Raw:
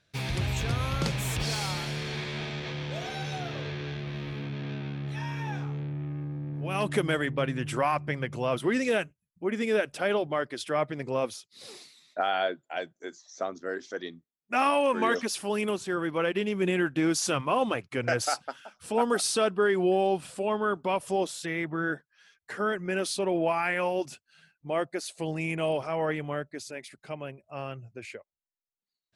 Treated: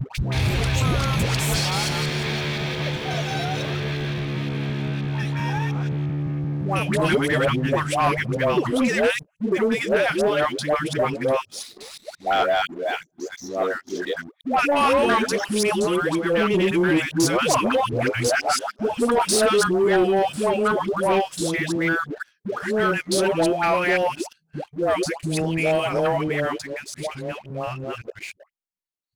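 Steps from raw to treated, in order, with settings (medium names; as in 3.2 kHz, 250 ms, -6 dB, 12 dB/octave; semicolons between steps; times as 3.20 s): time reversed locally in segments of 174 ms; phase dispersion highs, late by 149 ms, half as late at 610 Hz; waveshaping leveller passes 2; trim +1.5 dB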